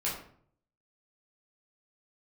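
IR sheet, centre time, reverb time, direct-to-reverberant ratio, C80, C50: 38 ms, 0.55 s, -6.5 dB, 8.5 dB, 4.5 dB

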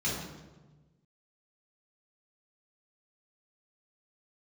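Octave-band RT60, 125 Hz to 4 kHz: 1.7, 1.5, 1.3, 1.1, 0.90, 0.80 s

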